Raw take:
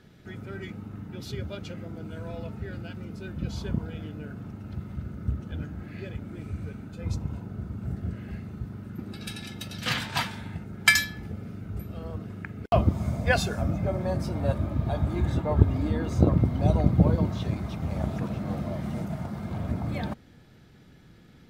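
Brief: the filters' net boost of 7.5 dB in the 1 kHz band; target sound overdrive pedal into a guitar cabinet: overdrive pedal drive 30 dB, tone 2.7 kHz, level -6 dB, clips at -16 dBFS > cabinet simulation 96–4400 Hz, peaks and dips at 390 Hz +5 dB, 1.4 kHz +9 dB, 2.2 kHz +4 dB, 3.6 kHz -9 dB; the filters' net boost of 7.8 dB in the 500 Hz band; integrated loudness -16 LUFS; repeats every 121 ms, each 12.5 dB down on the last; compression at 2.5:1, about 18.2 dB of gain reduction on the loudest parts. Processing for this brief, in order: peaking EQ 500 Hz +6.5 dB; peaking EQ 1 kHz +5 dB; compression 2.5:1, threshold -41 dBFS; feedback delay 121 ms, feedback 24%, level -12.5 dB; overdrive pedal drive 30 dB, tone 2.7 kHz, level -6 dB, clips at -16 dBFS; cabinet simulation 96–4400 Hz, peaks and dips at 390 Hz +5 dB, 1.4 kHz +9 dB, 2.2 kHz +4 dB, 3.6 kHz -9 dB; trim +10 dB

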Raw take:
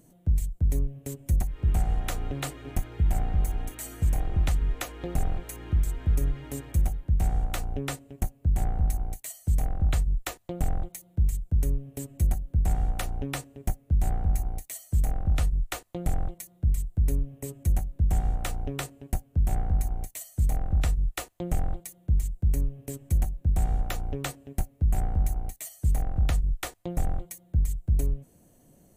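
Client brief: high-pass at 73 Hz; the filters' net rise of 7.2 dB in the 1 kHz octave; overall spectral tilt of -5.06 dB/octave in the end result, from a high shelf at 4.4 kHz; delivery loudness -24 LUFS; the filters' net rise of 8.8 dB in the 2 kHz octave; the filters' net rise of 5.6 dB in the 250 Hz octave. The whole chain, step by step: high-pass 73 Hz; peaking EQ 250 Hz +7.5 dB; peaking EQ 1 kHz +8.5 dB; peaking EQ 2 kHz +7.5 dB; treble shelf 4.4 kHz +3 dB; trim +7 dB

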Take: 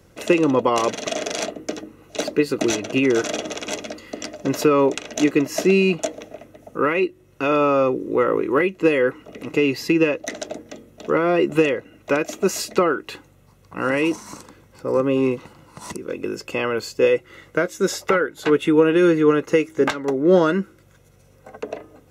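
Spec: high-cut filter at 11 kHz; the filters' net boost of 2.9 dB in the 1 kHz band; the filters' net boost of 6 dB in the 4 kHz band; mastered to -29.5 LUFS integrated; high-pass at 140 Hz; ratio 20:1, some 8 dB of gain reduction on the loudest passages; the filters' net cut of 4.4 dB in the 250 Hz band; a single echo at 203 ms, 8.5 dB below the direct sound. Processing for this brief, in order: high-pass 140 Hz; low-pass 11 kHz; peaking EQ 250 Hz -6.5 dB; peaking EQ 1 kHz +3.5 dB; peaking EQ 4 kHz +8 dB; compression 20:1, threshold -20 dBFS; delay 203 ms -8.5 dB; trim -3.5 dB

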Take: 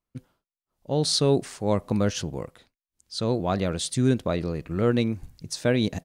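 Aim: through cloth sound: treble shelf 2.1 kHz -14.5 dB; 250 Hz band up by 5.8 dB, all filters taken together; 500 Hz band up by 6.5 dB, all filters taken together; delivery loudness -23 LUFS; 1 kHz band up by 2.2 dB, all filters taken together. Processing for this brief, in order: peaking EQ 250 Hz +5.5 dB; peaking EQ 500 Hz +6.5 dB; peaking EQ 1 kHz +3 dB; treble shelf 2.1 kHz -14.5 dB; trim -2 dB

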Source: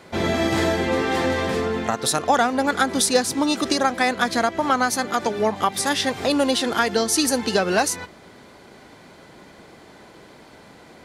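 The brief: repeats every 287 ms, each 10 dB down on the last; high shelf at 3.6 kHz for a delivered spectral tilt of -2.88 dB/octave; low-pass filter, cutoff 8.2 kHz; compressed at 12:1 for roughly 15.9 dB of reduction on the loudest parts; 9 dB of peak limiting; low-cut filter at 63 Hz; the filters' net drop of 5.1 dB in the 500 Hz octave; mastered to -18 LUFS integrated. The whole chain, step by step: high-pass 63 Hz; low-pass 8.2 kHz; peaking EQ 500 Hz -6.5 dB; treble shelf 3.6 kHz +5 dB; compression 12:1, threshold -32 dBFS; peak limiter -26 dBFS; feedback delay 287 ms, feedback 32%, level -10 dB; trim +19 dB

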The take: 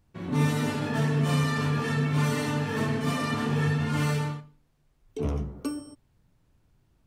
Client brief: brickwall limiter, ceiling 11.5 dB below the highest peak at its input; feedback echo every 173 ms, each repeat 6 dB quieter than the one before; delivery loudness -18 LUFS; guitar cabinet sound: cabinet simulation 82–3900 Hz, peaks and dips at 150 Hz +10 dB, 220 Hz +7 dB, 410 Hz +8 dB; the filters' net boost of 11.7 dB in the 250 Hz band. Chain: peaking EQ 250 Hz +6.5 dB; peak limiter -21.5 dBFS; cabinet simulation 82–3900 Hz, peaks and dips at 150 Hz +10 dB, 220 Hz +7 dB, 410 Hz +8 dB; feedback delay 173 ms, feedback 50%, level -6 dB; trim +3.5 dB

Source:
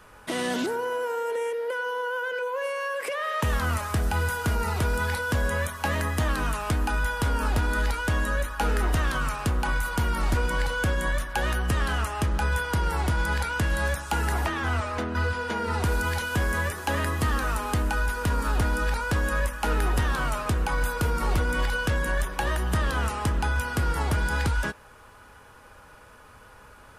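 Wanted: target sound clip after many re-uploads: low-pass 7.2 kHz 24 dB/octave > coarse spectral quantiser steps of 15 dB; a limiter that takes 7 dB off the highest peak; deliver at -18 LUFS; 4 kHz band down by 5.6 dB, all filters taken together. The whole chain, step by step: peaking EQ 4 kHz -8 dB; peak limiter -23.5 dBFS; low-pass 7.2 kHz 24 dB/octave; coarse spectral quantiser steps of 15 dB; trim +14 dB

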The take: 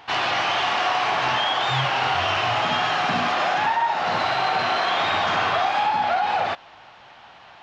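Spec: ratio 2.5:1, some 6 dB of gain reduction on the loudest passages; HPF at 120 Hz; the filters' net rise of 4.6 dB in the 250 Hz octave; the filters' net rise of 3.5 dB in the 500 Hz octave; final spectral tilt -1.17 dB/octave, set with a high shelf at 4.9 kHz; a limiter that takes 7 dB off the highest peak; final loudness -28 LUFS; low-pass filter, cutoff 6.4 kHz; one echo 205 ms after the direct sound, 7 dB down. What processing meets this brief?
high-pass 120 Hz; low-pass 6.4 kHz; peaking EQ 250 Hz +5 dB; peaking EQ 500 Hz +4.5 dB; treble shelf 4.9 kHz -8 dB; compression 2.5:1, threshold -26 dBFS; peak limiter -21 dBFS; delay 205 ms -7 dB; trim +0.5 dB

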